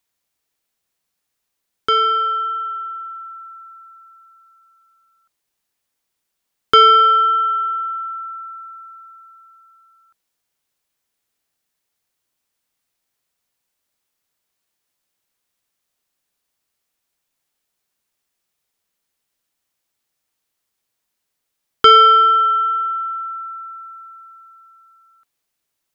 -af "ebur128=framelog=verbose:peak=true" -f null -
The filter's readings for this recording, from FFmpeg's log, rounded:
Integrated loudness:
  I:         -14.2 LUFS
  Threshold: -27.9 LUFS
Loudness range:
  LRA:        15.4 LU
  Threshold: -39.0 LUFS
  LRA low:   -30.5 LUFS
  LRA high:  -15.1 LUFS
True peak:
  Peak:       -3.0 dBFS